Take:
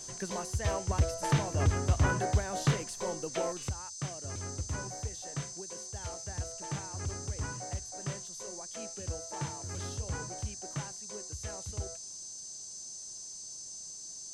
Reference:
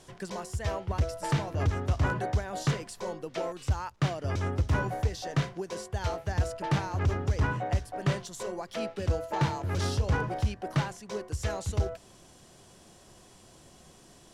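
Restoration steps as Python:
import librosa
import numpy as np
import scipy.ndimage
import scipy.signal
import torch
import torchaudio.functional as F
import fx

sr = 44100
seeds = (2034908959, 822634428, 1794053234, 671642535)

y = fx.notch(x, sr, hz=6200.0, q=30.0)
y = fx.noise_reduce(y, sr, print_start_s=13.82, print_end_s=14.32, reduce_db=10.0)
y = fx.gain(y, sr, db=fx.steps((0.0, 0.0), (3.69, 10.5)))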